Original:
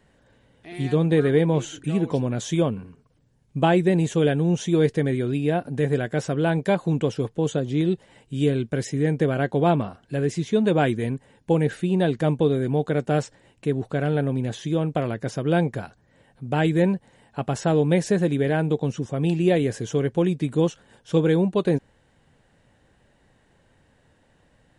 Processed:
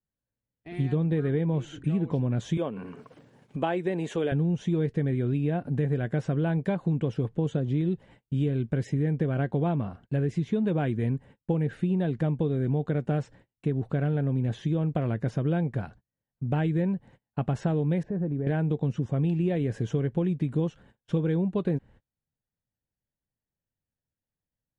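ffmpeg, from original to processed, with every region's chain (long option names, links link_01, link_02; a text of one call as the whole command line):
ffmpeg -i in.wav -filter_complex "[0:a]asettb=1/sr,asplit=3[link_01][link_02][link_03];[link_01]atrim=end=2.574[link_04];[link_02]atrim=start=2.57:end=4.32,asetpts=PTS-STARTPTS,afade=type=in:duration=0.004:curve=qsin,afade=type=out:start_time=1.746:duration=0.004:curve=qsin,highpass=380,acompressor=mode=upward:threshold=-26dB:ratio=2.5:attack=3.2:release=140:knee=2.83:detection=peak[link_05];[link_03]atrim=start=4.316[link_06];[link_04][link_05]acrossfade=duration=0.004:curve1=hsin:curve2=qsin[link_07];[link_07][link_06]acrossfade=duration=0.004:curve1=qsin:curve2=hsin,asettb=1/sr,asplit=3[link_08][link_09][link_10];[link_08]atrim=end=18.034[link_11];[link_09]atrim=start=18.03:end=18.47,asetpts=PTS-STARTPTS,afade=type=in:duration=0.004:curve=qsin,afade=type=out:start_time=0.436:duration=0.004:curve=qsin,lowpass=1100,acompressor=threshold=-33dB:ratio=2:attack=3.2:release=140:knee=1:detection=peak[link_12];[link_10]atrim=start=18.466[link_13];[link_11][link_12]acrossfade=duration=0.004:curve1=hsin:curve2=qsin[link_14];[link_14][link_13]acrossfade=duration=0.004:curve1=qsin:curve2=hsin,agate=range=-34dB:threshold=-47dB:ratio=16:detection=peak,bass=frequency=250:gain=8,treble=frequency=4000:gain=-12,acompressor=threshold=-20dB:ratio=6,volume=-3dB" out.wav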